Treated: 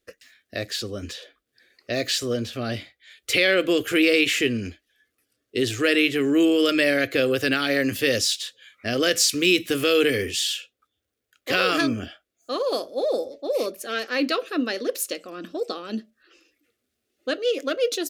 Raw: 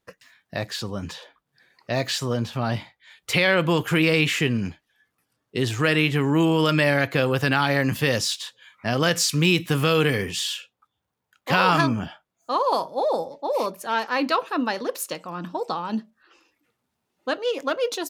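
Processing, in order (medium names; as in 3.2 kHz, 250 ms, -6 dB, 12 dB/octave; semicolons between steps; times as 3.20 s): static phaser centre 380 Hz, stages 4; trim +3 dB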